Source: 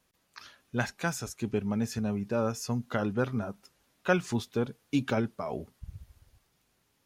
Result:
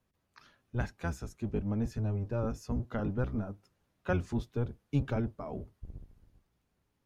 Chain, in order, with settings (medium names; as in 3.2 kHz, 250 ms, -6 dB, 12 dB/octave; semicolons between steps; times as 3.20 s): octave divider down 1 oct, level +3 dB; treble shelf 2.2 kHz -9.5 dB; trim -5.5 dB